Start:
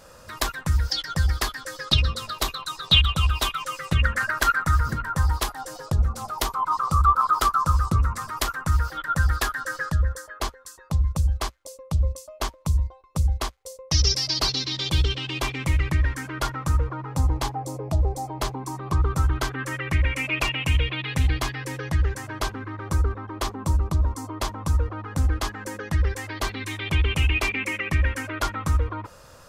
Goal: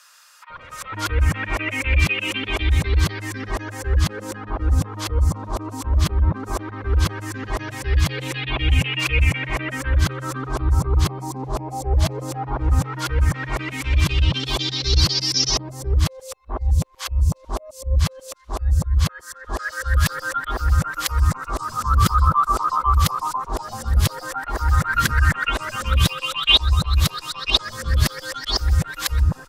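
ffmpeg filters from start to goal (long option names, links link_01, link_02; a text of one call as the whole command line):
ffmpeg -i in.wav -filter_complex "[0:a]areverse,acrossover=split=1200[link_01][link_02];[link_01]adelay=500[link_03];[link_03][link_02]amix=inputs=2:normalize=0,volume=3.5dB" out.wav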